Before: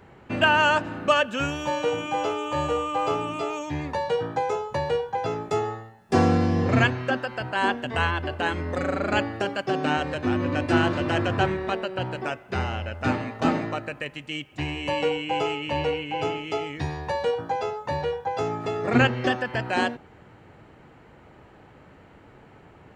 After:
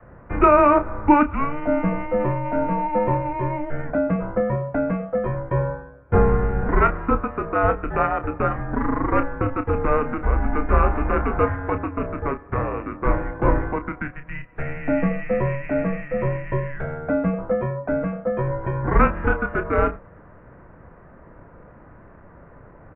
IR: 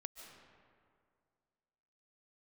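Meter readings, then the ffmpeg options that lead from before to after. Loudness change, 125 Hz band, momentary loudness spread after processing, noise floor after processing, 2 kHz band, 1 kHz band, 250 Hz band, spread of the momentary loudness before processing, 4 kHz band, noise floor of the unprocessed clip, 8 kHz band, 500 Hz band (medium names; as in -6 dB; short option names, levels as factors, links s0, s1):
+3.0 dB, +4.0 dB, 9 LU, -47 dBFS, -3.0 dB, +3.0 dB, +3.5 dB, 9 LU, under -20 dB, -51 dBFS, under -35 dB, +3.5 dB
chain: -filter_complex "[0:a]asplit=2[s0][s1];[s1]acrusher=samples=8:mix=1:aa=0.000001,volume=0.596[s2];[s0][s2]amix=inputs=2:normalize=0,highpass=f=170:t=q:w=0.5412,highpass=f=170:t=q:w=1.307,lowpass=f=2200:t=q:w=0.5176,lowpass=f=2200:t=q:w=0.7071,lowpass=f=2200:t=q:w=1.932,afreqshift=-290,asplit=2[s3][s4];[s4]adelay=30,volume=0.335[s5];[s3][s5]amix=inputs=2:normalize=0,adynamicequalizer=threshold=0.02:dfrequency=140:dqfactor=0.73:tfrequency=140:tqfactor=0.73:attack=5:release=100:ratio=0.375:range=3:mode=cutabove:tftype=bell,volume=1.26"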